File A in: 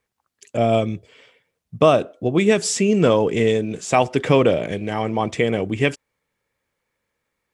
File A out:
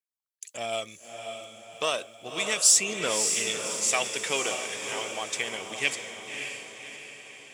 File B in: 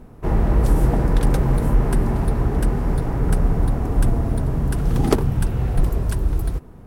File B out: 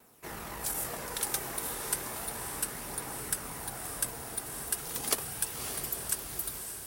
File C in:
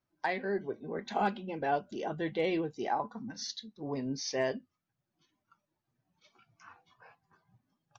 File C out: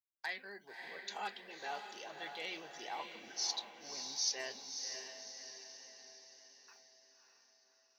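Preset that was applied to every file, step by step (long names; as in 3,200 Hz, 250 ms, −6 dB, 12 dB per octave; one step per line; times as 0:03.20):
one-sided soft clipper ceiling −3.5 dBFS
noise gate with hold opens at −39 dBFS
phase shifter 0.33 Hz, delay 2.8 ms, feedback 31%
first difference
feedback delay with all-pass diffusion 582 ms, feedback 51%, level −6 dB
level +6 dB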